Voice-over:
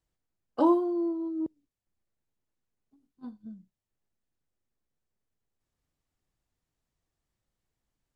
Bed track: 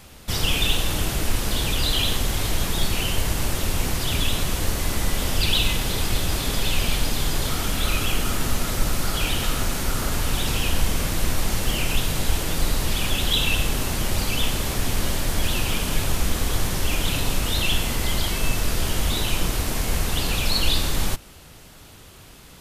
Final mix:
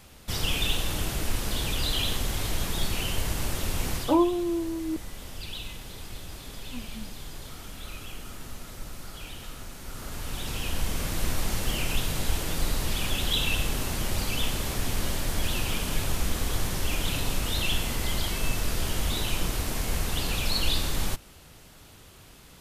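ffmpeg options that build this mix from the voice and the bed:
-filter_complex "[0:a]adelay=3500,volume=1dB[a];[1:a]volume=6.5dB,afade=t=out:st=3.96:d=0.2:silence=0.266073,afade=t=in:st=9.79:d=1.48:silence=0.251189[b];[a][b]amix=inputs=2:normalize=0"

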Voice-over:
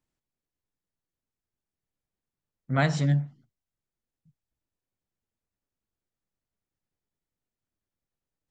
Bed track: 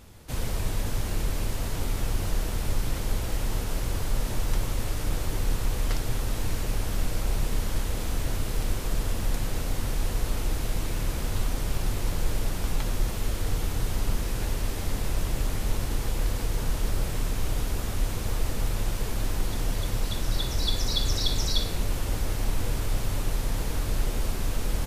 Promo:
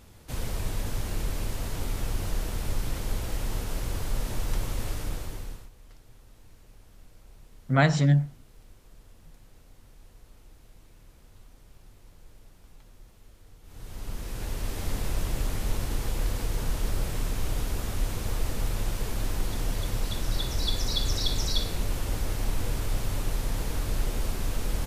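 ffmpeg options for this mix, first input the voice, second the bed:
-filter_complex "[0:a]adelay=5000,volume=3dB[a];[1:a]volume=21.5dB,afade=t=out:st=4.91:d=0.79:silence=0.0707946,afade=t=in:st=13.63:d=1.26:silence=0.0630957[b];[a][b]amix=inputs=2:normalize=0"

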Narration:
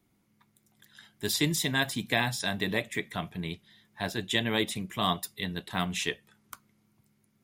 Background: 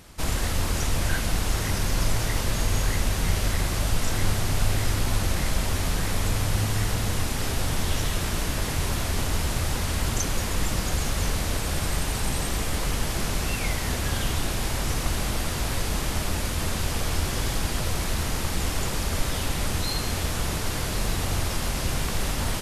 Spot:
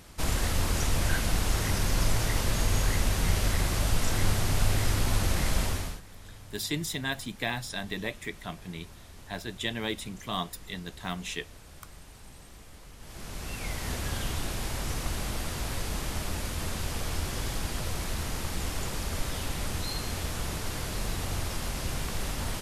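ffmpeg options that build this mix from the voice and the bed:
-filter_complex "[0:a]adelay=5300,volume=-4.5dB[a];[1:a]volume=15dB,afade=t=out:st=5.62:d=0.39:silence=0.0891251,afade=t=in:st=12.98:d=0.93:silence=0.141254[b];[a][b]amix=inputs=2:normalize=0"

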